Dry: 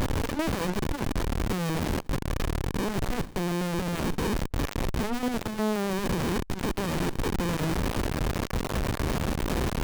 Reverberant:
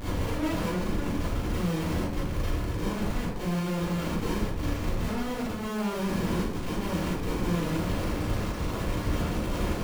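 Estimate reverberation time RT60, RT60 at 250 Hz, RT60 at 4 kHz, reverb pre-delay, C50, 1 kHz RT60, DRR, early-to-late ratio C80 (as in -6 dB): 0.75 s, 0.80 s, 0.50 s, 31 ms, -3.0 dB, 0.70 s, -11.5 dB, 3.5 dB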